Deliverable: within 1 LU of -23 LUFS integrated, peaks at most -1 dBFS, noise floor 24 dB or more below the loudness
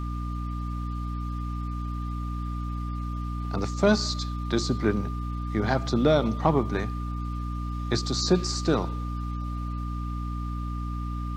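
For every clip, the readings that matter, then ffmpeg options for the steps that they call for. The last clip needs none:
hum 60 Hz; highest harmonic 300 Hz; hum level -29 dBFS; steady tone 1.2 kHz; tone level -39 dBFS; loudness -28.5 LUFS; peak level -8.0 dBFS; loudness target -23.0 LUFS
-> -af "bandreject=f=60:t=h:w=6,bandreject=f=120:t=h:w=6,bandreject=f=180:t=h:w=6,bandreject=f=240:t=h:w=6,bandreject=f=300:t=h:w=6"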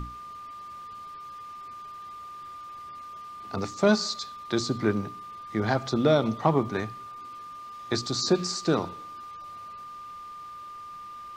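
hum not found; steady tone 1.2 kHz; tone level -39 dBFS
-> -af "bandreject=f=1200:w=30"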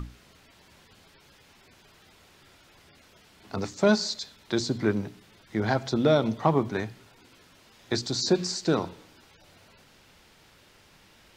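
steady tone not found; loudness -27.0 LUFS; peak level -8.5 dBFS; loudness target -23.0 LUFS
-> -af "volume=1.58"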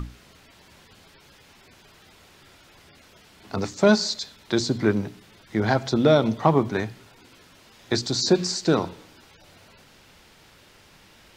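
loudness -23.0 LUFS; peak level -4.5 dBFS; noise floor -54 dBFS

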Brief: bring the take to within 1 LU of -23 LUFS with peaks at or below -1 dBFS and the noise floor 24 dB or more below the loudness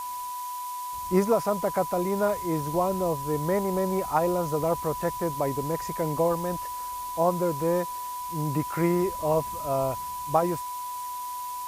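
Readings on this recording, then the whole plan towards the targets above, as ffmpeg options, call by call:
steady tone 990 Hz; tone level -32 dBFS; noise floor -35 dBFS; noise floor target -52 dBFS; loudness -27.5 LUFS; peak level -9.5 dBFS; loudness target -23.0 LUFS
-> -af "bandreject=f=990:w=30"
-af "afftdn=nr=17:nf=-35"
-af "volume=1.68"

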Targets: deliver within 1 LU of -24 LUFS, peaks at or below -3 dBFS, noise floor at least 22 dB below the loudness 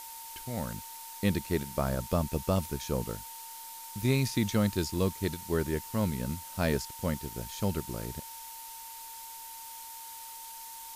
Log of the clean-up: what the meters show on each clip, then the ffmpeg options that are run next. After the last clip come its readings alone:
steady tone 910 Hz; tone level -47 dBFS; noise floor -45 dBFS; noise floor target -56 dBFS; loudness -33.5 LUFS; peak level -13.5 dBFS; loudness target -24.0 LUFS
-> -af "bandreject=f=910:w=30"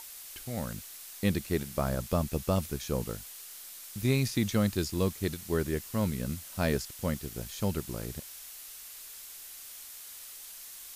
steady tone not found; noise floor -47 dBFS; noise floor target -56 dBFS
-> -af "afftdn=nr=9:nf=-47"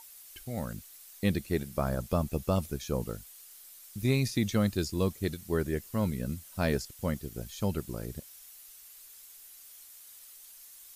noise floor -52 dBFS; noise floor target -55 dBFS
-> -af "afftdn=nr=6:nf=-52"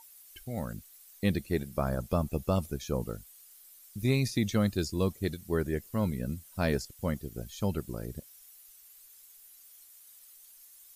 noise floor -56 dBFS; loudness -32.5 LUFS; peak level -14.0 dBFS; loudness target -24.0 LUFS
-> -af "volume=2.66"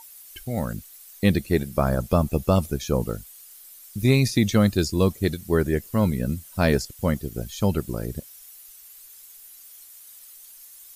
loudness -24.0 LUFS; peak level -5.5 dBFS; noise floor -47 dBFS

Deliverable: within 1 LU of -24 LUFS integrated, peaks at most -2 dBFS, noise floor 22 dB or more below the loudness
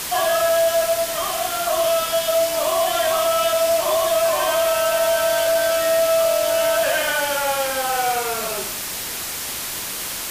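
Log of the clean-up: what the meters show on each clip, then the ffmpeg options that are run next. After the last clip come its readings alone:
noise floor -28 dBFS; noise floor target -42 dBFS; loudness -19.5 LUFS; peak level -8.0 dBFS; loudness target -24.0 LUFS
-> -af "afftdn=nr=14:nf=-28"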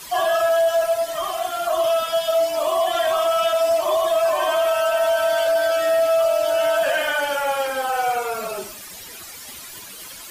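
noise floor -38 dBFS; noise floor target -42 dBFS
-> -af "afftdn=nr=6:nf=-38"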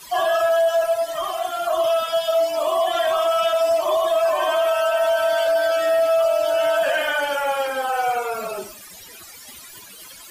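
noise floor -42 dBFS; loudness -20.0 LUFS; peak level -9.5 dBFS; loudness target -24.0 LUFS
-> -af "volume=0.631"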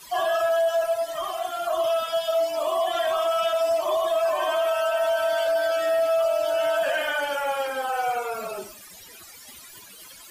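loudness -24.0 LUFS; peak level -13.5 dBFS; noise floor -46 dBFS

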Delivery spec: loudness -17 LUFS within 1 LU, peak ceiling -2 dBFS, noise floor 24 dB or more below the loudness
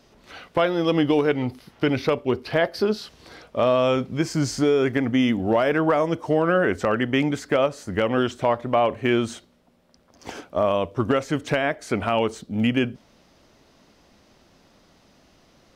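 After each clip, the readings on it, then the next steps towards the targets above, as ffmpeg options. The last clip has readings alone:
loudness -23.0 LUFS; peak level -9.5 dBFS; loudness target -17.0 LUFS
-> -af "volume=2"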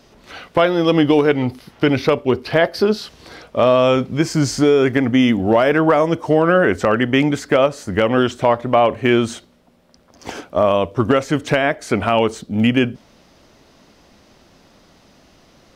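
loudness -17.0 LUFS; peak level -3.5 dBFS; noise floor -52 dBFS

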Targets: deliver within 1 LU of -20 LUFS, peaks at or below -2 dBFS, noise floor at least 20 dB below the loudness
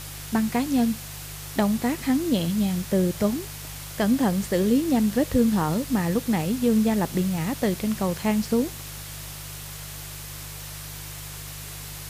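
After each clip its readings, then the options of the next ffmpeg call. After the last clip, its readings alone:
hum 50 Hz; highest harmonic 150 Hz; hum level -39 dBFS; noise floor -38 dBFS; noise floor target -44 dBFS; loudness -24.0 LUFS; peak level -10.0 dBFS; loudness target -20.0 LUFS
-> -af "bandreject=f=50:t=h:w=4,bandreject=f=100:t=h:w=4,bandreject=f=150:t=h:w=4"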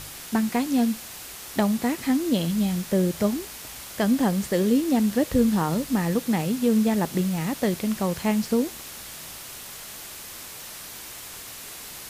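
hum not found; noise floor -40 dBFS; noise floor target -44 dBFS
-> -af "afftdn=nr=6:nf=-40"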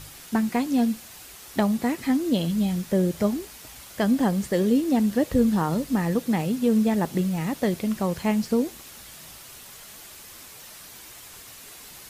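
noise floor -45 dBFS; loudness -24.5 LUFS; peak level -10.5 dBFS; loudness target -20.0 LUFS
-> -af "volume=1.68"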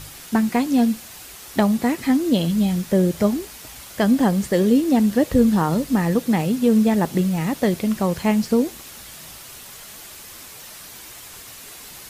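loudness -20.0 LUFS; peak level -6.0 dBFS; noise floor -40 dBFS

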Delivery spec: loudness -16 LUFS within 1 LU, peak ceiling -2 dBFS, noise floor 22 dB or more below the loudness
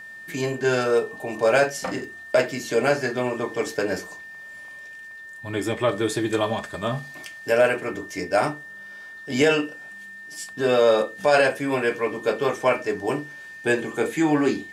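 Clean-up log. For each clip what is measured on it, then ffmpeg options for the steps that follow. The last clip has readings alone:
steady tone 1.8 kHz; tone level -38 dBFS; loudness -23.5 LUFS; peak level -5.5 dBFS; loudness target -16.0 LUFS
-> -af "bandreject=f=1800:w=30"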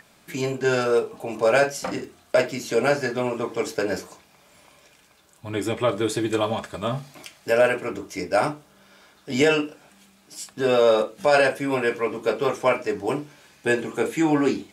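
steady tone not found; loudness -23.5 LUFS; peak level -6.0 dBFS; loudness target -16.0 LUFS
-> -af "volume=2.37,alimiter=limit=0.794:level=0:latency=1"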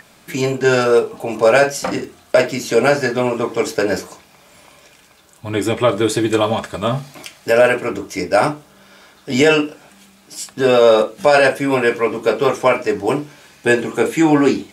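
loudness -16.5 LUFS; peak level -2.0 dBFS; noise floor -50 dBFS

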